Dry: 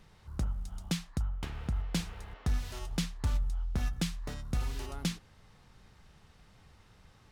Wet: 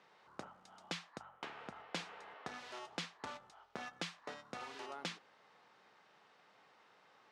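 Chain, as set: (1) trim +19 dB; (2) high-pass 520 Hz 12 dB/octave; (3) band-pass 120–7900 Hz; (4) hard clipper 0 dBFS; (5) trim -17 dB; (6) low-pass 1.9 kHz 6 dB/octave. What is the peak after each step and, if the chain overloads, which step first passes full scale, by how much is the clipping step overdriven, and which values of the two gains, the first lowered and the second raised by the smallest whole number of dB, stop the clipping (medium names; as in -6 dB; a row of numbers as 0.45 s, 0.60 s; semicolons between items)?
-3.5 dBFS, -3.0 dBFS, -2.0 dBFS, -2.0 dBFS, -19.0 dBFS, -25.0 dBFS; nothing clips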